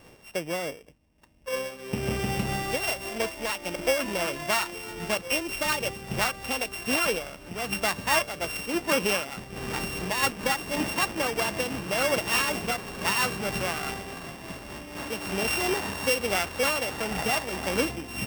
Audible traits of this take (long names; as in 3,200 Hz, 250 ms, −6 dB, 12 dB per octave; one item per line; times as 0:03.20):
a buzz of ramps at a fixed pitch in blocks of 16 samples
amplitude modulation by smooth noise